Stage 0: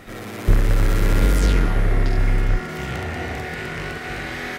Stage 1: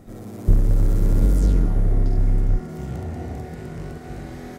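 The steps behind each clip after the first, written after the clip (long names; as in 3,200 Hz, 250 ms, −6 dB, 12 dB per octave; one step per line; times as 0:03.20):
drawn EQ curve 230 Hz 0 dB, 480 Hz −6 dB, 690 Hz −6 dB, 1,800 Hz −19 dB, 2,700 Hz −20 dB, 7,100 Hz −8 dB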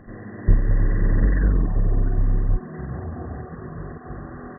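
hearing-aid frequency compression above 1,000 Hz 4 to 1
reverb reduction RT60 0.51 s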